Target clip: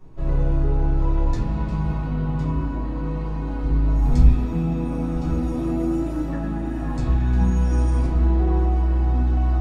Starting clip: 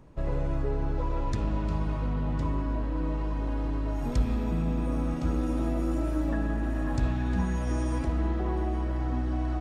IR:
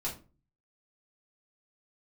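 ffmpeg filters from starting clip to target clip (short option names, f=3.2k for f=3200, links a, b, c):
-filter_complex "[0:a]asettb=1/sr,asplit=3[a][b][c];[a]atrim=end=3.634[d];[b]atrim=start=3.63:end=4.31,asetpts=PTS-STARTPTS,afade=t=in:d=0.004:c=qsin,afade=t=out:st=0.676:d=0.004:c=qsin,lowshelf=f=130:g=11[e];[c]atrim=start=4.306[f];[d][e]acrossfade=d=0.004:c1=hsin:c2=qsin[g];[g][f]acrossfade=d=0.004:c1=qsin:c2=hsin[h];[1:a]atrim=start_sample=2205[i];[h][i]afir=irnorm=-1:irlink=0"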